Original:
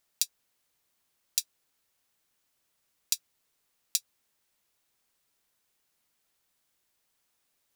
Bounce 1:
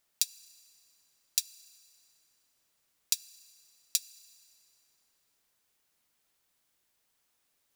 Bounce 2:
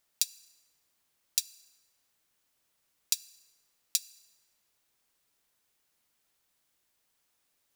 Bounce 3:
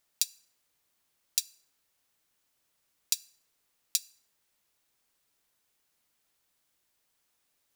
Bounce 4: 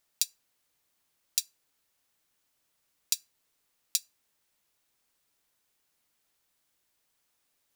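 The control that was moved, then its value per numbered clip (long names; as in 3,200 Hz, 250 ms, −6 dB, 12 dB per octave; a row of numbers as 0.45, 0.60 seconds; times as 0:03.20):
feedback delay network reverb, RT60: 3.9, 1.7, 0.81, 0.37 seconds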